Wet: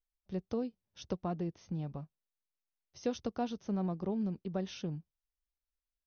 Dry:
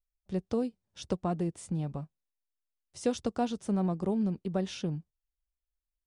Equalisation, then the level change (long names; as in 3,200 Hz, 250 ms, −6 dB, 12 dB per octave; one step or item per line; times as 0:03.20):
linear-phase brick-wall low-pass 6,400 Hz
−5.0 dB